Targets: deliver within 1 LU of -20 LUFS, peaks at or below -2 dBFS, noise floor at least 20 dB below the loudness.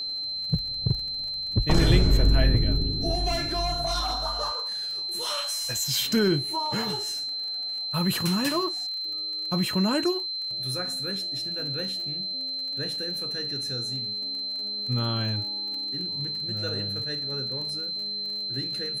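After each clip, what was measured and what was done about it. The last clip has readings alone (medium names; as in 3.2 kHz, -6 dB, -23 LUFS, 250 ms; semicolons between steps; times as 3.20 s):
tick rate 35 per s; steady tone 4.1 kHz; tone level -29 dBFS; loudness -26.5 LUFS; peak level -10.0 dBFS; loudness target -20.0 LUFS
-> de-click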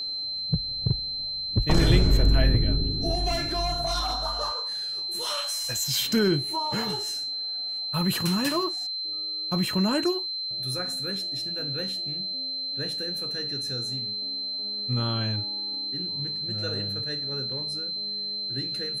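tick rate 0.16 per s; steady tone 4.1 kHz; tone level -29 dBFS
-> band-stop 4.1 kHz, Q 30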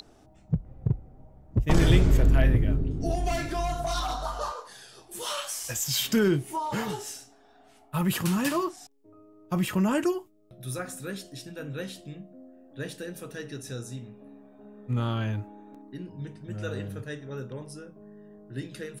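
steady tone not found; loudness -29.0 LUFS; peak level -10.0 dBFS; loudness target -20.0 LUFS
-> trim +9 dB; peak limiter -2 dBFS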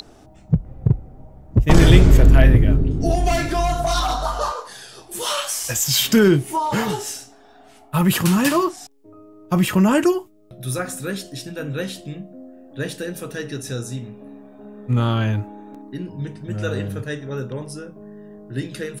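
loudness -20.0 LUFS; peak level -2.0 dBFS; noise floor -48 dBFS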